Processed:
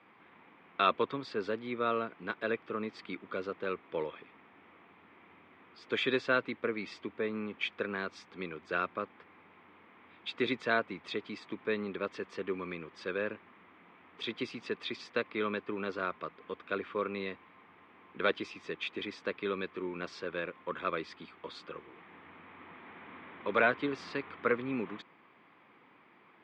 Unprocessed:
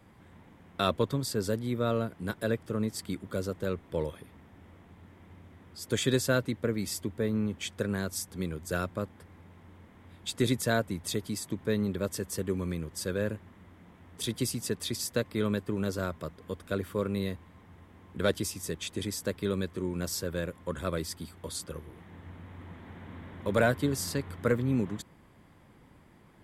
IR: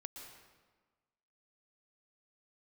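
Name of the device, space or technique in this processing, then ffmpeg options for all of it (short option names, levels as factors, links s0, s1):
phone earpiece: -af "highpass=350,equalizer=f=580:t=q:w=4:g=-5,equalizer=f=1200:t=q:w=4:g=6,equalizer=f=2400:t=q:w=4:g=8,lowpass=f=3500:w=0.5412,lowpass=f=3500:w=1.3066"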